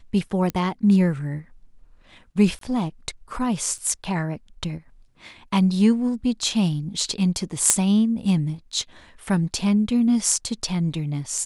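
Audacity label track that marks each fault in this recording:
0.500000	0.500000	click −13 dBFS
2.590000	2.610000	drop-out 23 ms
3.780000	3.780000	drop-out 4.4 ms
7.700000	7.700000	click −1 dBFS

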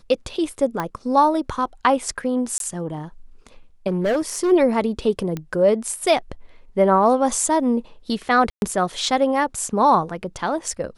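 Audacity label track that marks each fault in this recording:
0.800000	0.800000	click −11 dBFS
2.580000	2.600000	drop-out 22 ms
3.870000	4.520000	clipping −16.5 dBFS
5.370000	5.370000	click −15 dBFS
8.500000	8.620000	drop-out 121 ms

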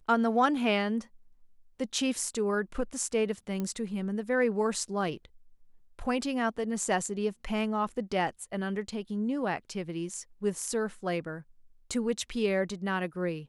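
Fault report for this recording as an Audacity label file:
3.600000	3.600000	click −21 dBFS

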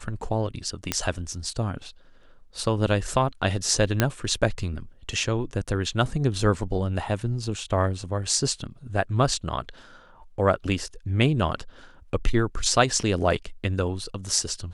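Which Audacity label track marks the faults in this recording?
0.920000	0.920000	click −7 dBFS
4.000000	4.000000	click −4 dBFS

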